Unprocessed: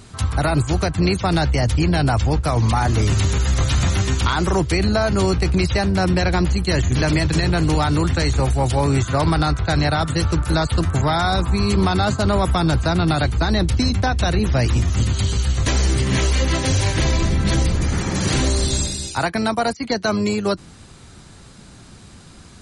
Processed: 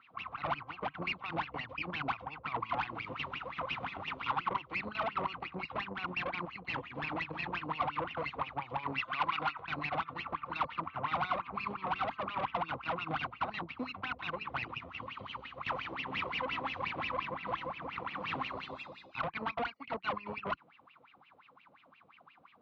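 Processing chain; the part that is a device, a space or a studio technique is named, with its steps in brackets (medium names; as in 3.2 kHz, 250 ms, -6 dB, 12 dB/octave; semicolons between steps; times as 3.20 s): wah-wah guitar rig (wah-wah 5.7 Hz 500–2800 Hz, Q 13; valve stage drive 37 dB, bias 0.75; cabinet simulation 86–3400 Hz, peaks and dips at 150 Hz +4 dB, 270 Hz +5 dB, 400 Hz -7 dB, 590 Hz -9 dB, 1.1 kHz +7 dB, 1.7 kHz -8 dB); 8.98–9.65 s: tilt shelf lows -5.5 dB, about 700 Hz; trim +8.5 dB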